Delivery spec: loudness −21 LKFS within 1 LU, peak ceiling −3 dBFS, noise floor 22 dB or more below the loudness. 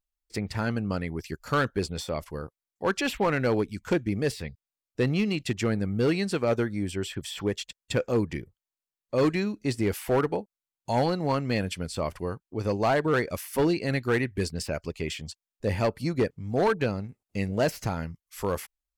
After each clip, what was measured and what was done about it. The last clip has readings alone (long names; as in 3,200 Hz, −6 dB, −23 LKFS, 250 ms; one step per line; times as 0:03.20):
share of clipped samples 1.2%; peaks flattened at −18.0 dBFS; integrated loudness −28.5 LKFS; sample peak −18.0 dBFS; target loudness −21.0 LKFS
→ clipped peaks rebuilt −18 dBFS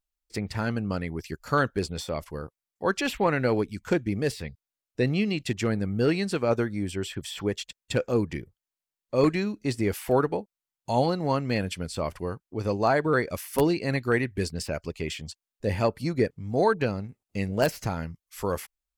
share of clipped samples 0.0%; integrated loudness −28.0 LKFS; sample peak −9.0 dBFS; target loudness −21.0 LKFS
→ level +7 dB
brickwall limiter −3 dBFS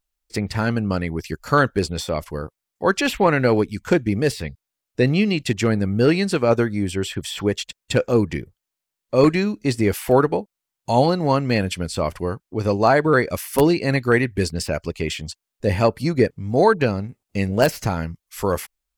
integrated loudness −21.0 LKFS; sample peak −3.0 dBFS; background noise floor −84 dBFS